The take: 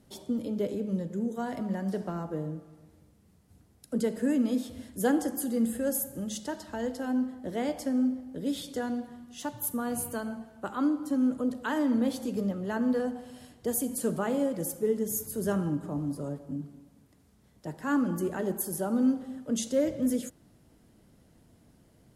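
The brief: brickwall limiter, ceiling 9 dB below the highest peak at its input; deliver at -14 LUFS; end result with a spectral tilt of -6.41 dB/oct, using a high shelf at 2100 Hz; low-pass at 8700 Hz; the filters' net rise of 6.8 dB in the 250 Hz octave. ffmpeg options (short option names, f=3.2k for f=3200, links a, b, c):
-af "lowpass=8.7k,equalizer=f=250:t=o:g=7.5,highshelf=f=2.1k:g=-3,volume=14.5dB,alimiter=limit=-4.5dB:level=0:latency=1"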